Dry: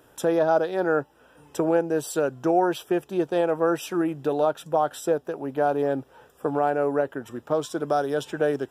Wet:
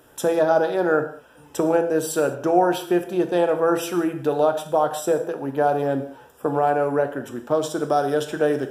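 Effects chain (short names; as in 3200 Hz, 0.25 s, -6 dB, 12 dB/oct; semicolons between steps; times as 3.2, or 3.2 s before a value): bell 13000 Hz +3 dB 1.4 oct; non-linear reverb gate 0.23 s falling, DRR 6.5 dB; gain +2.5 dB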